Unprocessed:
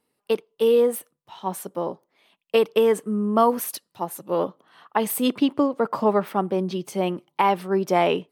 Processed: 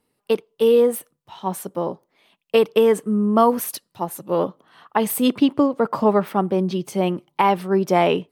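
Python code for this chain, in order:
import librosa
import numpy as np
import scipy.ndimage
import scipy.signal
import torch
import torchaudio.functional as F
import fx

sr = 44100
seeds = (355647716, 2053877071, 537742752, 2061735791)

y = fx.low_shelf(x, sr, hz=120.0, db=10.5)
y = y * librosa.db_to_amplitude(2.0)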